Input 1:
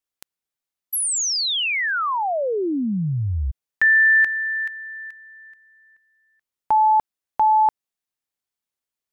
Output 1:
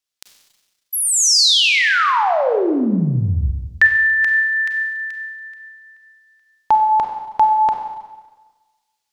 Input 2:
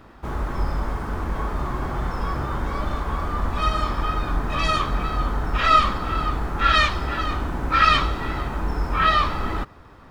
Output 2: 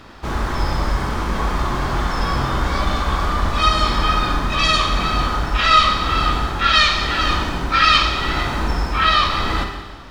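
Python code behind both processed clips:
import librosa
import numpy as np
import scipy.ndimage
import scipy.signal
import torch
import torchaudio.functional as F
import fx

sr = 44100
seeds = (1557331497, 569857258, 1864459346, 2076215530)

y = fx.peak_eq(x, sr, hz=4600.0, db=10.5, octaves=2.1)
y = fx.rider(y, sr, range_db=3, speed_s=0.5)
y = fx.rev_schroeder(y, sr, rt60_s=1.3, comb_ms=31, drr_db=4.0)
y = y * 10.0 ** (1.0 / 20.0)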